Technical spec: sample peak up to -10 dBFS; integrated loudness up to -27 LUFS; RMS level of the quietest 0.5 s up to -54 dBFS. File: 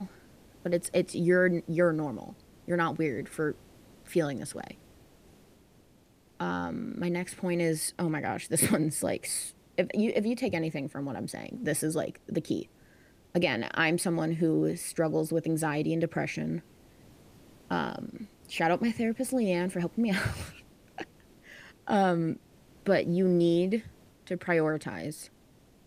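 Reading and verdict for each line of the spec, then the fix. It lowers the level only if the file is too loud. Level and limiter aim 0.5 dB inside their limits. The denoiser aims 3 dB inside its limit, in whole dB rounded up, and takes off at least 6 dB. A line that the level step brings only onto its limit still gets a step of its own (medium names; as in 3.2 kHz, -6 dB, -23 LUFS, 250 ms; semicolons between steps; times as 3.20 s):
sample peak -11.5 dBFS: pass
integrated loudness -30.0 LUFS: pass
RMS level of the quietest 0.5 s -61 dBFS: pass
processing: none needed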